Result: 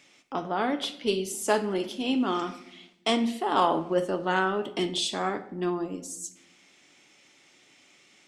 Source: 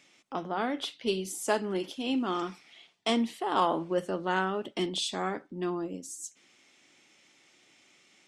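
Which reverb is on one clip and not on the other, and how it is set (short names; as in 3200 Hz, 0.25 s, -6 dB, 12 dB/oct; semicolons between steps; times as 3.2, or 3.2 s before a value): shoebox room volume 220 m³, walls mixed, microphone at 0.33 m; gain +3 dB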